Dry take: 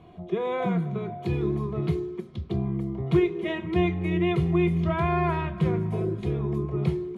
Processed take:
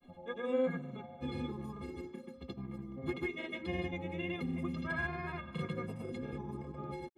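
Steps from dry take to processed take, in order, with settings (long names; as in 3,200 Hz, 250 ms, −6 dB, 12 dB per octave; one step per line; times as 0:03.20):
stiff-string resonator 250 Hz, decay 0.28 s, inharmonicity 0.03
granular cloud, pitch spread up and down by 0 semitones
level +10 dB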